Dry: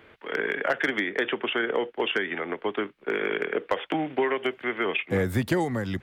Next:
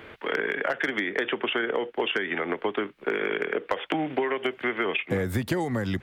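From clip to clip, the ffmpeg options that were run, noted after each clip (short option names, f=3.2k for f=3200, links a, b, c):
-af "acompressor=threshold=-33dB:ratio=4,volume=8dB"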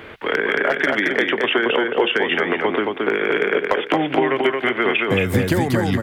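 -af "aecho=1:1:223|446|669:0.708|0.163|0.0375,volume=7dB"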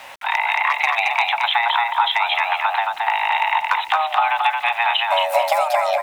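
-af "afreqshift=470,aeval=exprs='val(0)*gte(abs(val(0)),0.00841)':c=same"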